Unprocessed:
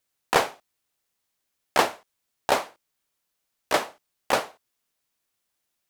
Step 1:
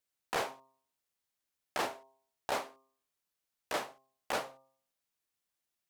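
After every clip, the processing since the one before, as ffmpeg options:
ffmpeg -i in.wav -af "bandreject=frequency=133.2:width_type=h:width=4,bandreject=frequency=266.4:width_type=h:width=4,bandreject=frequency=399.6:width_type=h:width=4,bandreject=frequency=532.8:width_type=h:width=4,bandreject=frequency=666:width_type=h:width=4,bandreject=frequency=799.2:width_type=h:width=4,bandreject=frequency=932.4:width_type=h:width=4,bandreject=frequency=1065.6:width_type=h:width=4,bandreject=frequency=1198.8:width_type=h:width=4,alimiter=limit=-14dB:level=0:latency=1:release=16,volume=-8.5dB" out.wav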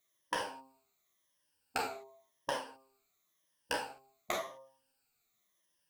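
ffmpeg -i in.wav -af "afftfilt=real='re*pow(10,14/40*sin(2*PI*(1.2*log(max(b,1)*sr/1024/100)/log(2)-(-0.92)*(pts-256)/sr)))':imag='im*pow(10,14/40*sin(2*PI*(1.2*log(max(b,1)*sr/1024/100)/log(2)-(-0.92)*(pts-256)/sr)))':win_size=1024:overlap=0.75,acompressor=threshold=-38dB:ratio=10,flanger=delay=7.2:depth=7.4:regen=25:speed=0.4:shape=triangular,volume=9.5dB" out.wav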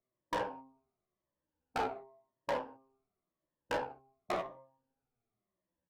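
ffmpeg -i in.wav -filter_complex "[0:a]acrossover=split=230[link_01][link_02];[link_02]adynamicsmooth=sensitivity=2:basefreq=670[link_03];[link_01][link_03]amix=inputs=2:normalize=0,volume=34dB,asoftclip=hard,volume=-34dB,asplit=2[link_04][link_05];[link_05]adelay=16,volume=-8dB[link_06];[link_04][link_06]amix=inputs=2:normalize=0,volume=5dB" out.wav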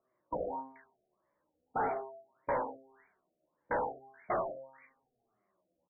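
ffmpeg -i in.wav -filter_complex "[0:a]asplit=2[link_01][link_02];[link_02]highpass=frequency=720:poles=1,volume=22dB,asoftclip=type=tanh:threshold=-26dB[link_03];[link_01][link_03]amix=inputs=2:normalize=0,lowpass=frequency=5100:poles=1,volume=-6dB,acrossover=split=2900[link_04][link_05];[link_05]adelay=430[link_06];[link_04][link_06]amix=inputs=2:normalize=0,afftfilt=real='re*lt(b*sr/1024,730*pow(2400/730,0.5+0.5*sin(2*PI*1.7*pts/sr)))':imag='im*lt(b*sr/1024,730*pow(2400/730,0.5+0.5*sin(2*PI*1.7*pts/sr)))':win_size=1024:overlap=0.75" out.wav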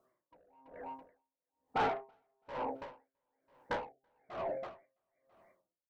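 ffmpeg -i in.wav -filter_complex "[0:a]asoftclip=type=tanh:threshold=-33.5dB,asplit=2[link_01][link_02];[link_02]aecho=0:1:331|662|993:0.316|0.0822|0.0214[link_03];[link_01][link_03]amix=inputs=2:normalize=0,aeval=exprs='val(0)*pow(10,-36*(0.5-0.5*cos(2*PI*1.1*n/s))/20)':channel_layout=same,volume=6.5dB" out.wav

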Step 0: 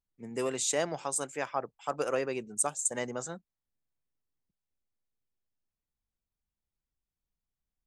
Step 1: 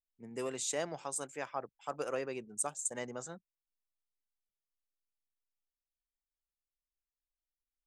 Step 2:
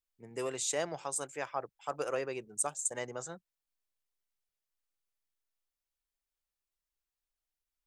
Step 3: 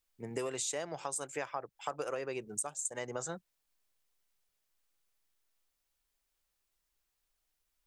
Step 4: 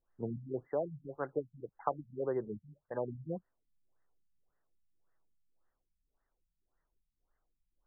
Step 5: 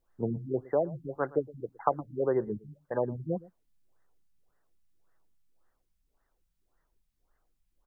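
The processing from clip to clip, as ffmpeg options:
ffmpeg -i in.wav -af "anlmdn=0.000398,volume=-6dB" out.wav
ffmpeg -i in.wav -af "equalizer=frequency=230:width=3.2:gain=-8.5,volume=2.5dB" out.wav
ffmpeg -i in.wav -af "acompressor=threshold=-42dB:ratio=12,volume=8.5dB" out.wav
ffmpeg -i in.wav -af "afftfilt=real='re*lt(b*sr/1024,210*pow(2100/210,0.5+0.5*sin(2*PI*1.8*pts/sr)))':imag='im*lt(b*sr/1024,210*pow(2100/210,0.5+0.5*sin(2*PI*1.8*pts/sr)))':win_size=1024:overlap=0.75,volume=5.5dB" out.wav
ffmpeg -i in.wav -af "aecho=1:1:115:0.0891,volume=7dB" out.wav

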